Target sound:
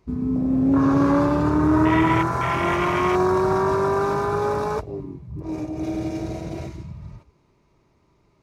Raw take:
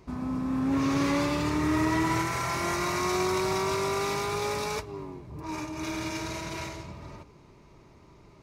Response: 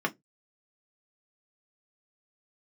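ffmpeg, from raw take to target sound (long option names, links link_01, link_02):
-af "afwtdn=0.0316,volume=8.5dB"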